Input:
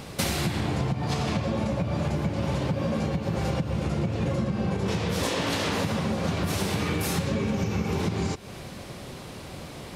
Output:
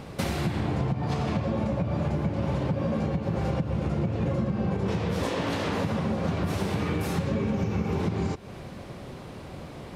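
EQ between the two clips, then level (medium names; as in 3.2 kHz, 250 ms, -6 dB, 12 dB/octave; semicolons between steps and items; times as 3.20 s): treble shelf 2.8 kHz -11 dB; 0.0 dB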